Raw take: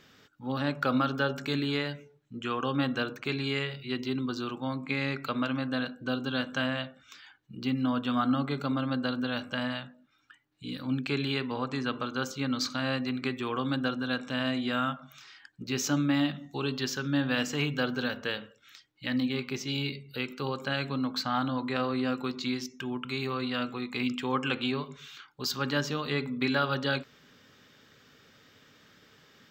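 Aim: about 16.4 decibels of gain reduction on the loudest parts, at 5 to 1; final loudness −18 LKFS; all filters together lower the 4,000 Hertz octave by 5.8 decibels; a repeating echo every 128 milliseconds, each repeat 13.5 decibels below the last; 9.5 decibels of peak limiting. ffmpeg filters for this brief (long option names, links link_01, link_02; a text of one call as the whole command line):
ffmpeg -i in.wav -af "equalizer=frequency=4000:width_type=o:gain=-8,acompressor=threshold=-42dB:ratio=5,alimiter=level_in=11.5dB:limit=-24dB:level=0:latency=1,volume=-11.5dB,aecho=1:1:128|256:0.211|0.0444,volume=28.5dB" out.wav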